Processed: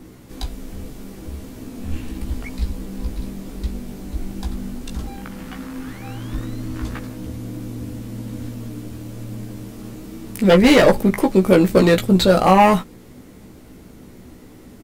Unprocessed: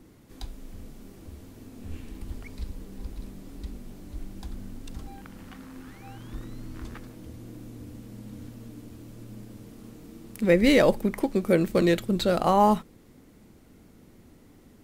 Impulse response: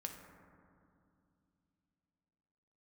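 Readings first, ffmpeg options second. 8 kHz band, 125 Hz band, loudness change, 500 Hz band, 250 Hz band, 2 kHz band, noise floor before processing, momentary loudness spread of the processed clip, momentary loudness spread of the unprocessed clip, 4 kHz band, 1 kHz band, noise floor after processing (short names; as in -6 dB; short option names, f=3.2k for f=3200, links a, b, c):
+10.0 dB, +10.5 dB, +4.5 dB, +8.0 dB, +8.5 dB, +8.5 dB, -54 dBFS, 22 LU, 22 LU, +9.5 dB, +8.0 dB, -43 dBFS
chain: -filter_complex "[0:a]aeval=exprs='0.398*sin(PI/2*2*val(0)/0.398)':c=same,asplit=2[a][b];[b]adelay=16,volume=-4.5dB[c];[a][c]amix=inputs=2:normalize=0"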